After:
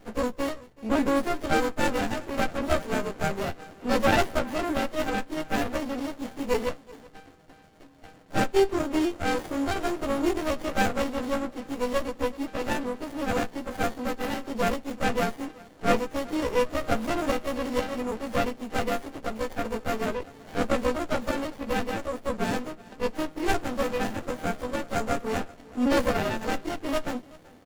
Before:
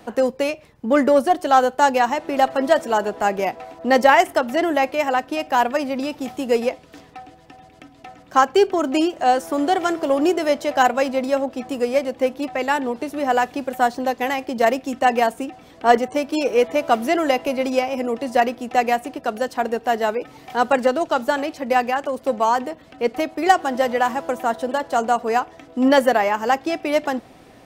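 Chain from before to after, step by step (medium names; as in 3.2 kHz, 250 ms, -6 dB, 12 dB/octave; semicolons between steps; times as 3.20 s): partials quantised in pitch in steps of 2 st; band-stop 1.7 kHz, Q 12; on a send: delay 380 ms -21.5 dB; on the sum: sliding maximum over 33 samples; trim -5 dB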